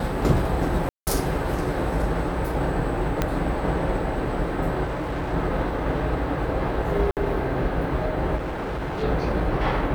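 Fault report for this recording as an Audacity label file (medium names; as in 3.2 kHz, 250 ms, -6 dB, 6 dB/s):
0.890000	1.070000	dropout 179 ms
3.220000	3.220000	pop -8 dBFS
4.830000	5.340000	clipped -24 dBFS
7.110000	7.170000	dropout 58 ms
8.360000	9.040000	clipped -25.5 dBFS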